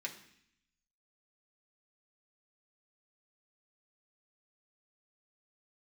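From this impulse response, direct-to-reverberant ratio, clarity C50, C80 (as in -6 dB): -1.0 dB, 10.5 dB, 13.5 dB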